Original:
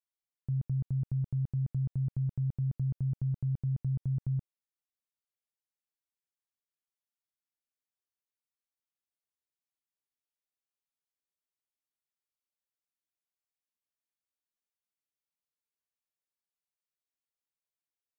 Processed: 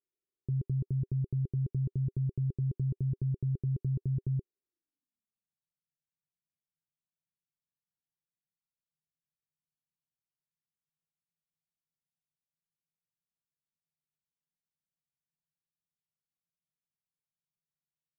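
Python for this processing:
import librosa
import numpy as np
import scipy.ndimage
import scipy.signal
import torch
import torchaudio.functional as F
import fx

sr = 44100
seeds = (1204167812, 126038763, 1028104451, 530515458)

y = fx.filter_sweep_lowpass(x, sr, from_hz=390.0, to_hz=160.0, start_s=4.62, end_s=5.59, q=7.0)
y = F.gain(torch.from_numpy(y), -1.0).numpy()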